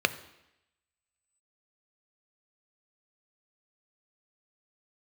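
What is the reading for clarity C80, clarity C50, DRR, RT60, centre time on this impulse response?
18.0 dB, 16.0 dB, 11.5 dB, 0.85 s, 5 ms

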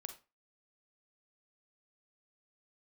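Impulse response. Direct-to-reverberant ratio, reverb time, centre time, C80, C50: 6.5 dB, 0.30 s, 11 ms, 16.0 dB, 10.0 dB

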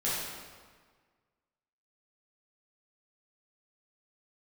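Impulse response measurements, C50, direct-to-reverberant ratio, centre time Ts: -2.0 dB, -9.5 dB, 103 ms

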